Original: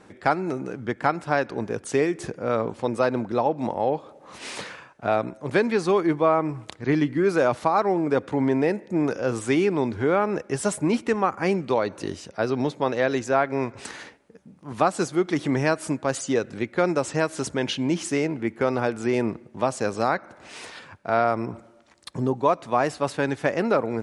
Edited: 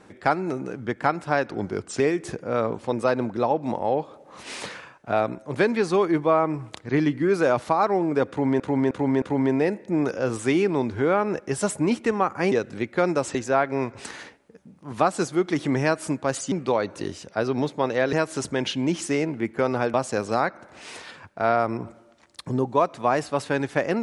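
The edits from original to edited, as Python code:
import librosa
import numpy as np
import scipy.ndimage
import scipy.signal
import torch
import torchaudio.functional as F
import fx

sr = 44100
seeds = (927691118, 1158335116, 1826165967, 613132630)

y = fx.edit(x, sr, fx.speed_span(start_s=1.52, length_s=0.43, speed=0.9),
    fx.repeat(start_s=8.24, length_s=0.31, count=4),
    fx.swap(start_s=11.54, length_s=1.61, other_s=16.32, other_length_s=0.83),
    fx.cut(start_s=18.96, length_s=0.66), tone=tone)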